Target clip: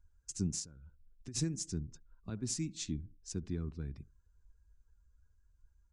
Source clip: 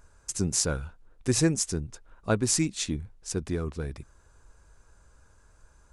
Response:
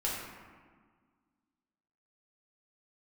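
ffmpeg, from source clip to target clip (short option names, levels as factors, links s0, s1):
-filter_complex "[0:a]acrossover=split=310 5400:gain=0.251 1 0.112[s0][s1][s2];[s0][s1][s2]amix=inputs=3:normalize=0,asplit=2[s3][s4];[s4]adelay=71,lowpass=f=1400:p=1,volume=0.0891,asplit=2[s5][s6];[s6]adelay=71,lowpass=f=1400:p=1,volume=0.47,asplit=2[s7][s8];[s8]adelay=71,lowpass=f=1400:p=1,volume=0.47[s9];[s3][s5][s7][s9]amix=inputs=4:normalize=0,asplit=3[s10][s11][s12];[s10]afade=t=out:st=0.64:d=0.02[s13];[s11]acompressor=threshold=0.00708:ratio=8,afade=t=in:st=0.64:d=0.02,afade=t=out:st=1.34:d=0.02[s14];[s12]afade=t=in:st=1.34:d=0.02[s15];[s13][s14][s15]amix=inputs=3:normalize=0,alimiter=limit=0.0891:level=0:latency=1:release=296,afftdn=nr=15:nf=-57,firequalizer=gain_entry='entry(180,0);entry(500,-24);entry(7000,-4)':delay=0.05:min_phase=1,volume=1.78"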